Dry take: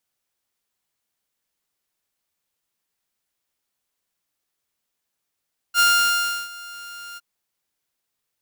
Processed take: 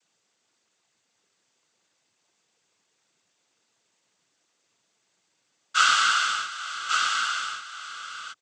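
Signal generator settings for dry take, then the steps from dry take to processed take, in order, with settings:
note with an ADSR envelope saw 1,400 Hz, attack 56 ms, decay 685 ms, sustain −22 dB, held 1.43 s, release 32 ms −10.5 dBFS
cochlear-implant simulation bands 16
on a send: single-tap delay 1,136 ms −7 dB
on the sum: multiband upward and downward compressor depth 40%

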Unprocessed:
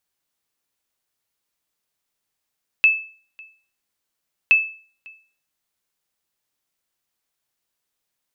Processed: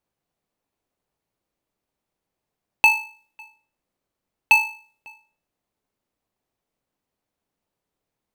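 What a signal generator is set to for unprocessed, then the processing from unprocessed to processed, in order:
ping with an echo 2,620 Hz, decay 0.42 s, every 1.67 s, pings 2, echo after 0.55 s, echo −27.5 dB −7 dBFS
in parallel at −7 dB: decimation without filtering 25×
on the sum: one half of a high-frequency compander decoder only

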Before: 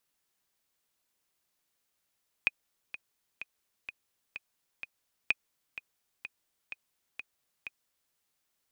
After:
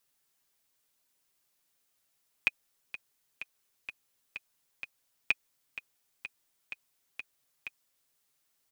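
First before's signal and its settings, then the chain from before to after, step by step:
click track 127 BPM, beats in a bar 6, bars 2, 2,490 Hz, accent 14.5 dB −11.5 dBFS
high-shelf EQ 5,100 Hz +4 dB
comb filter 7.4 ms, depth 48%

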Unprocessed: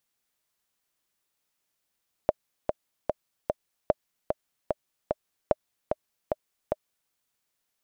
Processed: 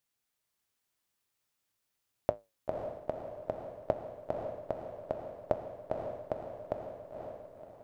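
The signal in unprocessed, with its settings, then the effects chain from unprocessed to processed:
click track 149 BPM, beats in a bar 4, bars 3, 611 Hz, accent 5 dB −7 dBFS
parametric band 110 Hz +7.5 dB 0.34 octaves
feedback delay with all-pass diffusion 526 ms, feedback 44%, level −3.5 dB
flanger 0.48 Hz, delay 7.7 ms, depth 5.5 ms, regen −76%

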